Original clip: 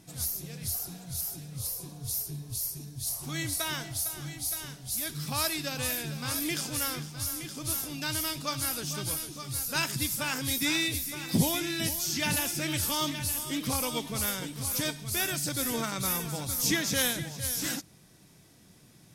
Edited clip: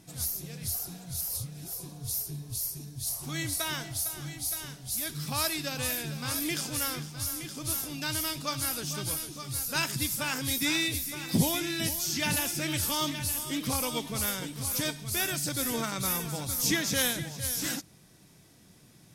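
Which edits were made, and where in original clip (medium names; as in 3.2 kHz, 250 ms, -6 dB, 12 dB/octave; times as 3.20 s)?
1.29–1.73 s: reverse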